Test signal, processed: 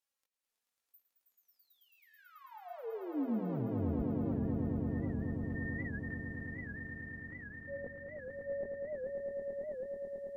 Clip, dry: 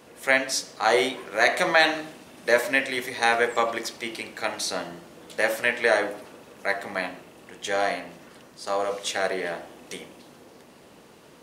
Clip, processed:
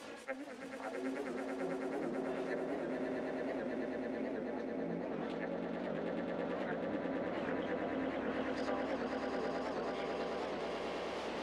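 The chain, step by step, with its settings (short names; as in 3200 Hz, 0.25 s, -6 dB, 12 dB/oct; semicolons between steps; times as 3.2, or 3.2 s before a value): auto swell 0.246 s; low shelf 170 Hz -10 dB; chorus voices 6, 0.62 Hz, delay 20 ms, depth 2.4 ms; reverse; compressor 5:1, threshold -41 dBFS; reverse; treble ducked by the level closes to 320 Hz, closed at -42 dBFS; flange 0.28 Hz, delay 3.5 ms, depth 1.8 ms, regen +37%; swelling echo 0.109 s, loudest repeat 8, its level -6 dB; record warp 78 rpm, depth 160 cents; gain +11.5 dB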